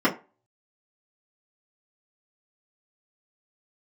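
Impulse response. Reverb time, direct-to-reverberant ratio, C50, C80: 0.30 s, -9.5 dB, 14.5 dB, 19.5 dB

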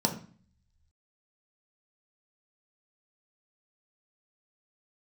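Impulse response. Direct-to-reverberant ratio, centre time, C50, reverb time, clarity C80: 2.0 dB, 14 ms, 10.5 dB, 0.45 s, 14.5 dB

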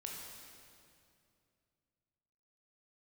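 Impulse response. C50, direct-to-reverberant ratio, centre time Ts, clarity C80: 0.0 dB, -1.5 dB, 107 ms, 2.0 dB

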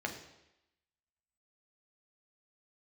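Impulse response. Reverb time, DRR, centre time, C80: 0.90 s, 2.5 dB, 19 ms, 11.0 dB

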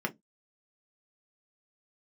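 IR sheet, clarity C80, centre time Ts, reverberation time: 37.5 dB, 6 ms, no single decay rate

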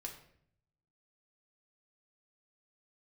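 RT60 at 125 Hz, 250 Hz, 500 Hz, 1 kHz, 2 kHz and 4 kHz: 1.2 s, 0.90 s, 0.70 s, 0.55 s, 0.60 s, 0.50 s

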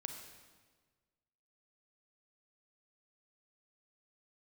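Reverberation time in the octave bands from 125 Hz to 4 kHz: 1.7 s, 1.6 s, 1.5 s, 1.4 s, 1.3 s, 1.2 s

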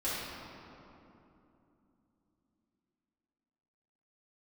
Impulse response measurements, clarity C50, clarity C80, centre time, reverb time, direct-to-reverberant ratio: -3.0 dB, -1.0 dB, 158 ms, 3.0 s, -12.0 dB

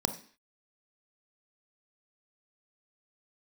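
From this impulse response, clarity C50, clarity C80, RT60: 12.0 dB, 16.5 dB, 0.45 s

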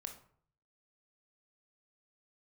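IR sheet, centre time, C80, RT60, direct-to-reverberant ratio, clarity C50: 15 ms, 13.5 dB, 0.55 s, 4.0 dB, 9.0 dB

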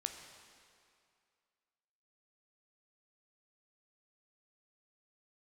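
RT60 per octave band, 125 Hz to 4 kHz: 2.1 s, 2.1 s, 2.3 s, 2.4 s, 2.2 s, 2.0 s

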